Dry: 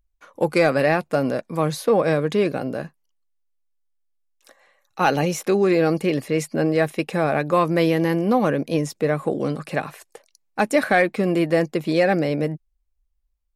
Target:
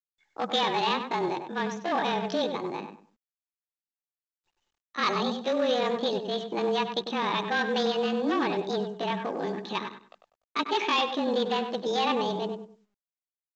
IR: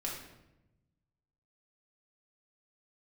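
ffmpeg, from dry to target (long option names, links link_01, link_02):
-filter_complex "[0:a]afreqshift=-24,asoftclip=type=hard:threshold=-14dB,highpass=110,equalizer=frequency=450:width_type=q:width=4:gain=-8,equalizer=frequency=1400:width_type=q:width=4:gain=-3,equalizer=frequency=2400:width_type=q:width=4:gain=7,lowpass=frequency=3700:width=0.5412,lowpass=frequency=3700:width=1.3066,asplit=2[link_01][link_02];[1:a]atrim=start_sample=2205,afade=type=out:start_time=0.23:duration=0.01,atrim=end_sample=10584[link_03];[link_02][link_03]afir=irnorm=-1:irlink=0,volume=-20.5dB[link_04];[link_01][link_04]amix=inputs=2:normalize=0,asetrate=68011,aresample=44100,atempo=0.64842,anlmdn=0.631,asplit=2[link_05][link_06];[link_06]adelay=98,lowpass=frequency=2000:poles=1,volume=-6.5dB,asplit=2[link_07][link_08];[link_08]adelay=98,lowpass=frequency=2000:poles=1,volume=0.26,asplit=2[link_09][link_10];[link_10]adelay=98,lowpass=frequency=2000:poles=1,volume=0.26[link_11];[link_05][link_07][link_09][link_11]amix=inputs=4:normalize=0,volume=-6dB" -ar 16000 -c:a pcm_mulaw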